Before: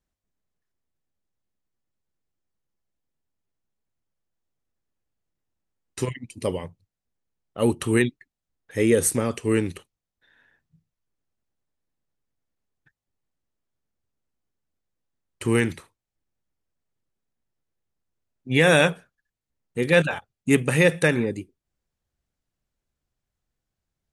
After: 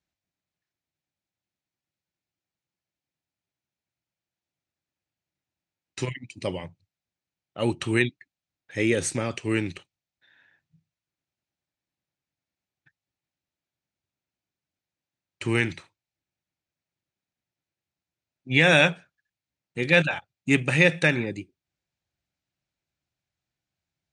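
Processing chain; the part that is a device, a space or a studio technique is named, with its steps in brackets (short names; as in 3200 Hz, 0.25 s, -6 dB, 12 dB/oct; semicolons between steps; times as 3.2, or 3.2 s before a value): car door speaker (speaker cabinet 100–7200 Hz, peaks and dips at 230 Hz -6 dB, 450 Hz -9 dB, 1100 Hz -5 dB, 2400 Hz +5 dB, 4000 Hz +3 dB)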